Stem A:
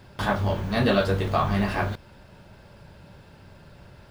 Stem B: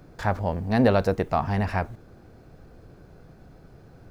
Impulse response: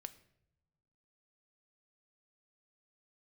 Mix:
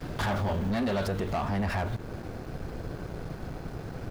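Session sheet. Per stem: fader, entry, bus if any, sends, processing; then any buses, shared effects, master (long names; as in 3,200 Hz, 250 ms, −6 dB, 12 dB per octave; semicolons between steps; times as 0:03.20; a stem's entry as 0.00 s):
−5.5 dB, 0.00 s, no send, automatic ducking −13 dB, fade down 1.50 s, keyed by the second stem
+1.0 dB, 12 ms, no send, downward compressor 2.5 to 1, threshold −34 dBFS, peak gain reduction 13.5 dB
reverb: not used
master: leveller curve on the samples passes 3; brickwall limiter −24 dBFS, peak gain reduction 8 dB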